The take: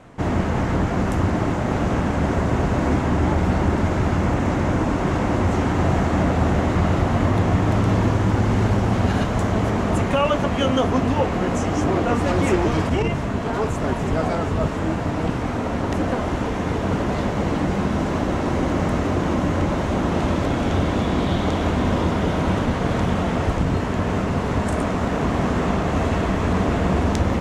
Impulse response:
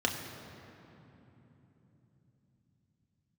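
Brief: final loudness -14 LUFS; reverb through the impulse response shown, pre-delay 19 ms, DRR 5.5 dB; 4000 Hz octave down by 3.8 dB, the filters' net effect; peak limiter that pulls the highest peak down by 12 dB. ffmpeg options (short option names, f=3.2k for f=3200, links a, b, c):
-filter_complex "[0:a]equalizer=f=4k:t=o:g=-5.5,alimiter=limit=-17.5dB:level=0:latency=1,asplit=2[a][b];[1:a]atrim=start_sample=2205,adelay=19[c];[b][c]afir=irnorm=-1:irlink=0,volume=-14dB[d];[a][d]amix=inputs=2:normalize=0,volume=10.5dB"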